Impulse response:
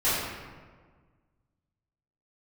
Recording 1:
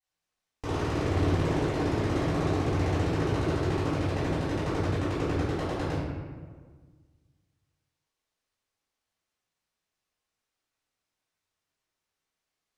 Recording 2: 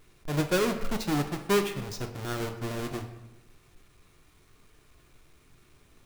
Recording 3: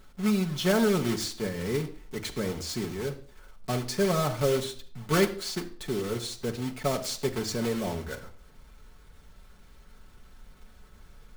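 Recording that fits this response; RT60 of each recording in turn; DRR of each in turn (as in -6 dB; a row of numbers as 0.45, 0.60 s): 1; 1.6 s, 0.95 s, not exponential; -15.0, 5.0, 1.5 dB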